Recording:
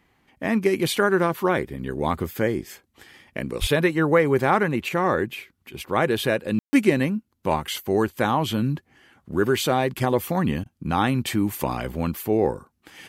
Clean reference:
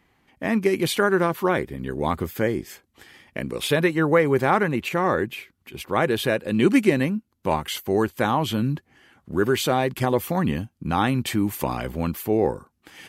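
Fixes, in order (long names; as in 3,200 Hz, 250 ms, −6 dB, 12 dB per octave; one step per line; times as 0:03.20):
0:03.60–0:03.72: high-pass filter 140 Hz 24 dB per octave
ambience match 0:06.59–0:06.73
repair the gap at 0:10.64, 16 ms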